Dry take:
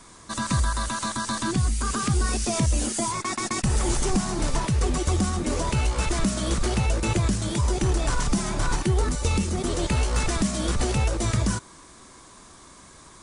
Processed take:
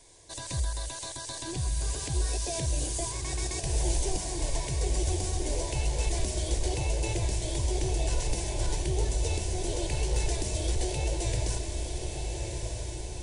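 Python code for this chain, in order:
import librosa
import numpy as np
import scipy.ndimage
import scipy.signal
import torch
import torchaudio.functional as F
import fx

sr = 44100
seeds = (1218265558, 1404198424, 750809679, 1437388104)

y = fx.fixed_phaser(x, sr, hz=520.0, stages=4)
y = fx.echo_diffused(y, sr, ms=1285, feedback_pct=57, wet_db=-4.5)
y = F.gain(torch.from_numpy(y), -5.0).numpy()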